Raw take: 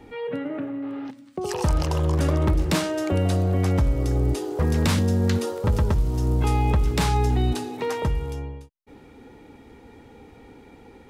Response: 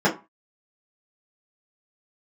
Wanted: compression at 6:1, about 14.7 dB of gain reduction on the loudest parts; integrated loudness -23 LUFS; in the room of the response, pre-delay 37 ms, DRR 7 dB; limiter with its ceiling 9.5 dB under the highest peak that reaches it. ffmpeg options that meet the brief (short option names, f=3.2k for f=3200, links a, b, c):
-filter_complex "[0:a]acompressor=threshold=-33dB:ratio=6,alimiter=level_in=6dB:limit=-24dB:level=0:latency=1,volume=-6dB,asplit=2[a][b];[1:a]atrim=start_sample=2205,adelay=37[c];[b][c]afir=irnorm=-1:irlink=0,volume=-25dB[d];[a][d]amix=inputs=2:normalize=0,volume=15.5dB"